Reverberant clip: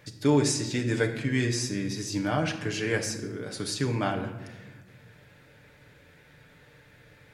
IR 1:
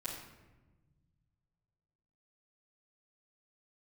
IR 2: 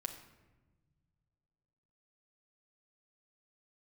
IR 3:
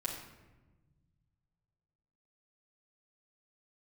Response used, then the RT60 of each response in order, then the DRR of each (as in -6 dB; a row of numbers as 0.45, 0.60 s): 2; 1.2, 1.2, 1.2 s; -14.5, 3.0, -5.0 dB